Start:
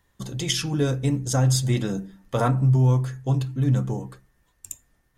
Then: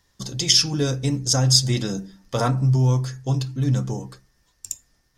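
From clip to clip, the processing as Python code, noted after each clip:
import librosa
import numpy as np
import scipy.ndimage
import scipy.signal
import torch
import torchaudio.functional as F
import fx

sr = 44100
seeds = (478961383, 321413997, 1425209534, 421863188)

y = fx.peak_eq(x, sr, hz=5200.0, db=15.0, octaves=0.75)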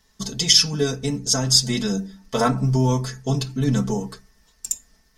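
y = x + 0.99 * np.pad(x, (int(4.6 * sr / 1000.0), 0))[:len(x)]
y = fx.rider(y, sr, range_db=5, speed_s=2.0)
y = F.gain(torch.from_numpy(y), -2.0).numpy()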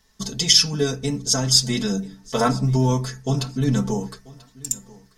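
y = fx.echo_feedback(x, sr, ms=988, feedback_pct=18, wet_db=-22.0)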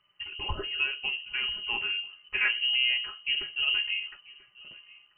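y = fx.freq_invert(x, sr, carrier_hz=3000)
y = fx.air_absorb(y, sr, metres=200.0)
y = F.gain(torch.from_numpy(y), -4.5).numpy()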